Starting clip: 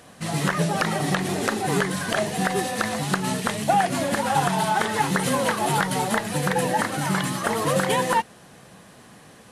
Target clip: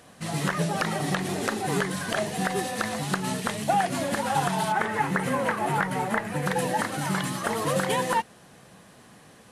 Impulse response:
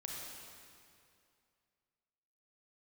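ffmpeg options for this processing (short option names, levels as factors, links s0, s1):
-filter_complex "[0:a]asettb=1/sr,asplit=3[s0][s1][s2];[s0]atrim=end=4.724[s3];[s1]atrim=start=4.72:end=6.46,asetpts=PTS-STARTPTS,afade=t=in:d=0.004:c=qsin,afade=t=out:st=1.736:d=0.004:c=qsin,highshelf=f=2800:t=q:w=1.5:g=-7.5[s4];[s2]atrim=start=6.456[s5];[s3][s4]acrossfade=d=0.004:c1=hsin:c2=qsin[s6];[s6][s5]acrossfade=d=0.004:c1=qsin:c2=hsin,volume=0.668"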